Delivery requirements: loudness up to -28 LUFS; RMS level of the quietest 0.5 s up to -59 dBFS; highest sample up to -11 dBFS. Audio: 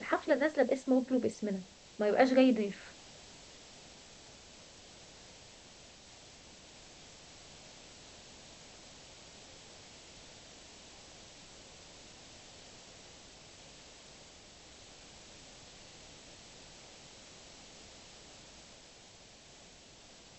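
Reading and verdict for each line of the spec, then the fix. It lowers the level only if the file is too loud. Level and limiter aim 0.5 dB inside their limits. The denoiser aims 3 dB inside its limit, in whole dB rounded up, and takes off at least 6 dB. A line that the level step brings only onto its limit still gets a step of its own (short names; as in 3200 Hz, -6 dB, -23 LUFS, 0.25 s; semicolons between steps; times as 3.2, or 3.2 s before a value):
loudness -30.5 LUFS: OK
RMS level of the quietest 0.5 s -56 dBFS: fail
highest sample -13.0 dBFS: OK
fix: denoiser 6 dB, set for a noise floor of -56 dBFS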